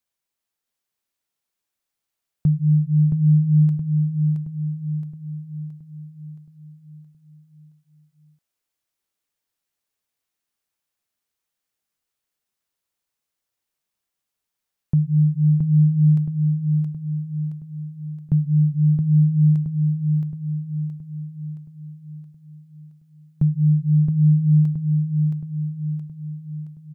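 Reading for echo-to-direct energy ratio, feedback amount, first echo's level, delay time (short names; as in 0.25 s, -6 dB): -3.0 dB, 51%, -4.5 dB, 0.671 s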